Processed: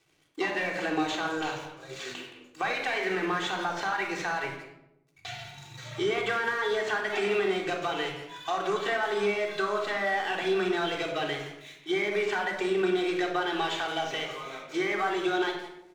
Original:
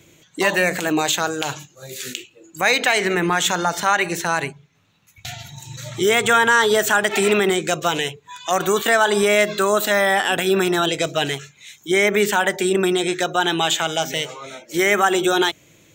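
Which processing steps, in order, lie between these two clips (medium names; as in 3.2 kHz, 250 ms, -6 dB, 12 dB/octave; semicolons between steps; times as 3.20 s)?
CVSD coder 64 kbps; high-pass 520 Hz 6 dB/octave; compression, threshold -24 dBFS, peak gain reduction 11 dB; Gaussian low-pass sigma 1.6 samples; crossover distortion -55 dBFS; speakerphone echo 170 ms, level -9 dB; simulated room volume 2300 m³, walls furnished, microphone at 3.6 m; trim -4.5 dB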